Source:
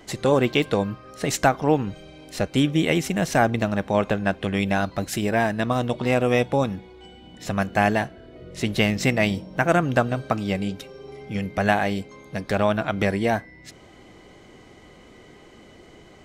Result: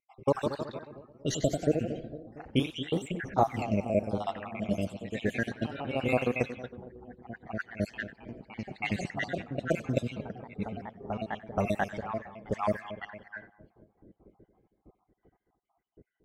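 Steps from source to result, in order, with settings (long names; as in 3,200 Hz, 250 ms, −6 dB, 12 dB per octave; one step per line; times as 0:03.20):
time-frequency cells dropped at random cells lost 77%
on a send: echo with a time of its own for lows and highs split 1,200 Hz, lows 229 ms, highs 96 ms, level −13 dB
on the sum: delay with pitch and tempo change per echo 173 ms, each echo +1 semitone, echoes 3, each echo −6 dB
low-pass that shuts in the quiet parts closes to 410 Hz, open at −21.5 dBFS
level −4 dB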